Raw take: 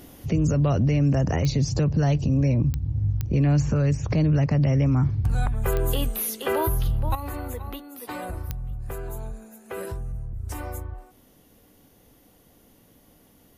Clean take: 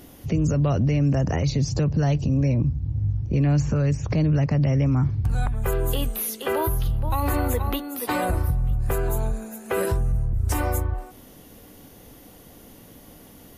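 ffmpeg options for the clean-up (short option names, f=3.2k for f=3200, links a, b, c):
-af "adeclick=t=4,asetnsamples=n=441:p=0,asendcmd='7.15 volume volume 9.5dB',volume=0dB"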